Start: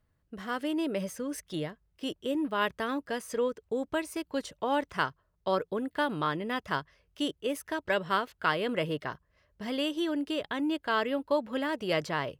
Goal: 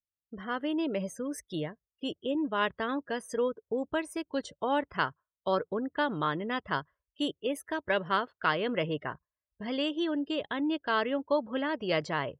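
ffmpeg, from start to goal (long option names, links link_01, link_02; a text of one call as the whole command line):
ffmpeg -i in.wav -af "afftdn=noise_reduction=34:noise_floor=-47" out.wav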